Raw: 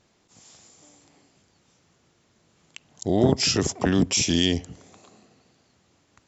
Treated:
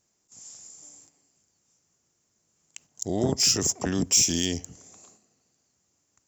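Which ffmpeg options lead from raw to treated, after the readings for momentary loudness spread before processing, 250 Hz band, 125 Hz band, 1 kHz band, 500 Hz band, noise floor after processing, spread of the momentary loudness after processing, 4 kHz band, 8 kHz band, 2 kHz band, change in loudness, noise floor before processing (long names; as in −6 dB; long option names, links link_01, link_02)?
7 LU, −6.0 dB, −6.0 dB, −6.0 dB, −6.0 dB, −74 dBFS, 12 LU, −1.0 dB, can't be measured, −6.0 dB, −1.0 dB, −65 dBFS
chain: -af "aexciter=amount=2.7:drive=9.7:freq=5400,agate=range=-8dB:threshold=-48dB:ratio=16:detection=peak,volume=-6dB"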